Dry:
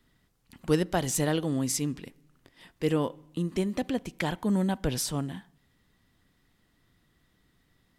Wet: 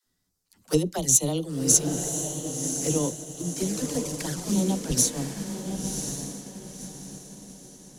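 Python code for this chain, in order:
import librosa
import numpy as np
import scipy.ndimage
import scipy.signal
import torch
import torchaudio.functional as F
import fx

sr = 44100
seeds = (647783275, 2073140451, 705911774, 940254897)

y = fx.delta_mod(x, sr, bps=64000, step_db=-32.0, at=(3.57, 4.63))
y = fx.high_shelf_res(y, sr, hz=4000.0, db=10.0, q=1.5)
y = fx.dispersion(y, sr, late='lows', ms=62.0, hz=310.0)
y = fx.env_flanger(y, sr, rest_ms=11.6, full_db=-23.0)
y = fx.echo_diffused(y, sr, ms=1043, feedback_pct=53, wet_db=-3.5)
y = fx.upward_expand(y, sr, threshold_db=-41.0, expansion=1.5)
y = F.gain(torch.from_numpy(y), 4.0).numpy()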